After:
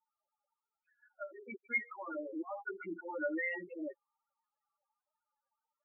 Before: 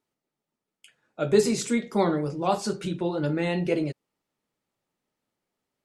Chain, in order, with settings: local Wiener filter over 15 samples; high-pass 1.5 kHz 12 dB/octave; tilt EQ -2 dB/octave; compression 2:1, threshold -47 dBFS, peak gain reduction 9.5 dB; slow attack 228 ms; in parallel at +0.5 dB: level held to a coarse grid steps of 21 dB; on the sum: loudest bins only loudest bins 4; touch-sensitive flanger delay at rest 3.5 ms, full sweep at -15.5 dBFS; brick-wall FIR low-pass 2.8 kHz; trim +16.5 dB

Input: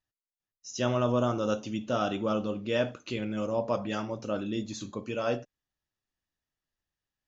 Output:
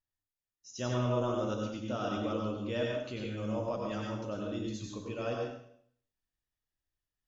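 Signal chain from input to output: bass shelf 88 Hz +9.5 dB; plate-style reverb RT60 0.62 s, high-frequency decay 1×, pre-delay 80 ms, DRR -0.5 dB; trim -8.5 dB

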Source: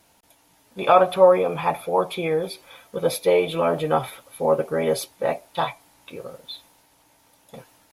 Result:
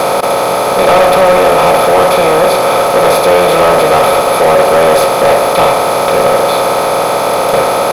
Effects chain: spectral levelling over time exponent 0.2; de-hum 50.16 Hz, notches 11; waveshaping leveller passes 3; trim -3.5 dB

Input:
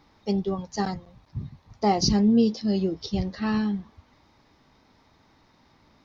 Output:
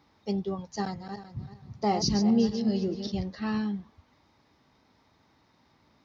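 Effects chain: 0.78–3.12 s: backward echo that repeats 191 ms, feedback 46%, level -8 dB; high-pass 59 Hz; trim -4.5 dB

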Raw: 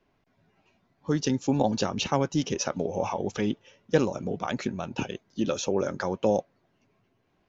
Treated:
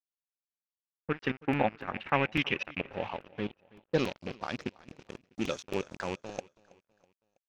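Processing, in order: rattle on loud lows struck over -32 dBFS, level -27 dBFS; level-controlled noise filter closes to 340 Hz, open at -20.5 dBFS; peaking EQ 3.1 kHz +11.5 dB 1.9 oct, from 2.81 s -6 dB, from 3.98 s +3.5 dB; bit crusher 9-bit; trance gate "xx..x.xxxxxx.x.x" 160 bpm -12 dB; crossover distortion -37.5 dBFS; low-pass sweep 1.6 kHz -> 6.5 kHz, 1.69–4.97 s; feedback delay 325 ms, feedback 45%, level -23 dB; crackling interface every 0.28 s, samples 128, repeat, from 0.97 s; trim -4.5 dB

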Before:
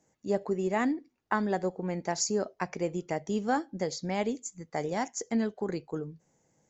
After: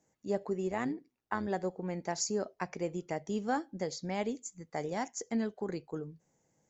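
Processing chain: 0.70–1.48 s: AM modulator 120 Hz, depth 40%; trim -4 dB

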